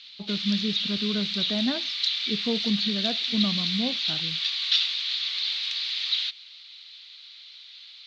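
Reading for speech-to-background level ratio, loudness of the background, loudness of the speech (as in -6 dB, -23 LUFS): -5.0 dB, -25.5 LUFS, -30.5 LUFS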